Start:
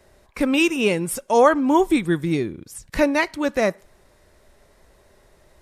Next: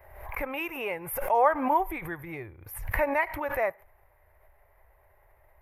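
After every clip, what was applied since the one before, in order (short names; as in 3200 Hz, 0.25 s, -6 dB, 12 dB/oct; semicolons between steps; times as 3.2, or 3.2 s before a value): EQ curve 100 Hz 0 dB, 210 Hz -23 dB, 820 Hz +4 dB, 1400 Hz -4 dB, 2100 Hz +1 dB, 3800 Hz -22 dB, 8000 Hz -27 dB, 12000 Hz +4 dB; backwards sustainer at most 63 dB/s; gain -5.5 dB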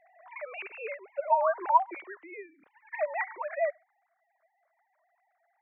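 sine-wave speech; gain -2.5 dB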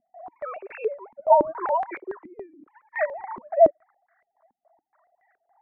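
soft clip -14.5 dBFS, distortion -18 dB; stepped low-pass 7.1 Hz 240–1700 Hz; gain +4 dB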